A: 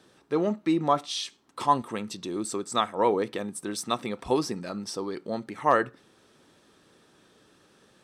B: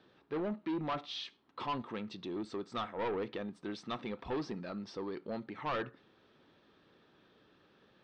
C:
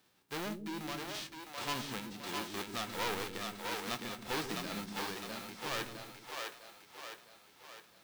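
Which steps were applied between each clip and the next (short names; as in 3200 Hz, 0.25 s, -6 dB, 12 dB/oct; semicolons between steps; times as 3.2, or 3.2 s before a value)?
soft clip -26 dBFS, distortion -6 dB; LPF 4100 Hz 24 dB/oct; gain -5.5 dB
spectral whitening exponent 0.3; random-step tremolo; split-band echo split 390 Hz, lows 0.137 s, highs 0.659 s, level -3.5 dB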